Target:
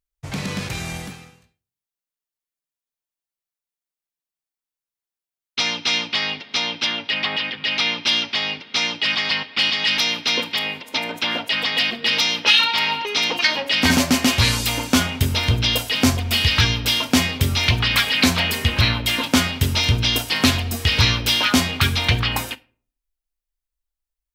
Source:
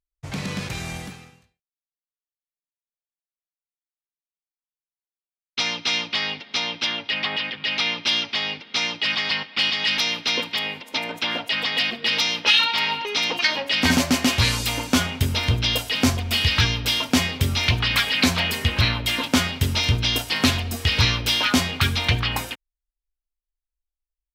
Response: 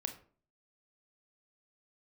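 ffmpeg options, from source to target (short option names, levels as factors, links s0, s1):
-filter_complex "[0:a]asplit=2[s0][s1];[1:a]atrim=start_sample=2205,highshelf=f=7300:g=9.5[s2];[s1][s2]afir=irnorm=-1:irlink=0,volume=0.335[s3];[s0][s3]amix=inputs=2:normalize=0"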